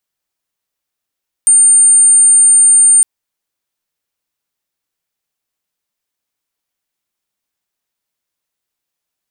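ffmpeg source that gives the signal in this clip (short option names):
-f lavfi -i "aevalsrc='0.631*sin(2*PI*9000*t)':d=1.56:s=44100"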